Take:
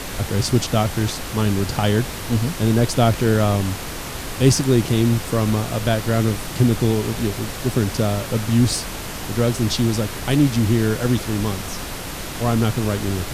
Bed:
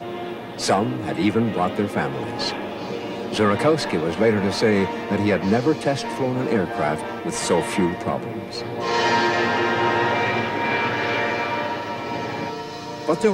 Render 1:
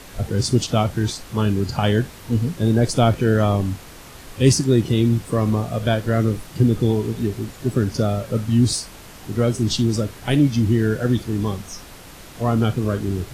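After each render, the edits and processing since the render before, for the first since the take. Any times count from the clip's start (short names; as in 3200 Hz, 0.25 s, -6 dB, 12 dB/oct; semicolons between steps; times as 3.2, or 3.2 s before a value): noise print and reduce 11 dB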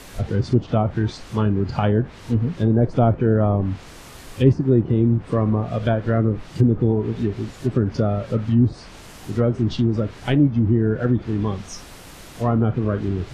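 treble ducked by the level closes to 1000 Hz, closed at -13.5 dBFS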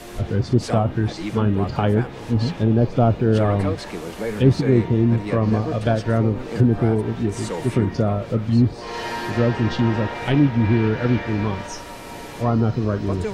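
add bed -9 dB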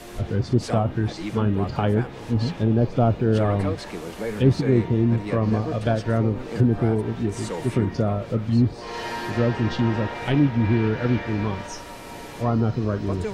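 gain -2.5 dB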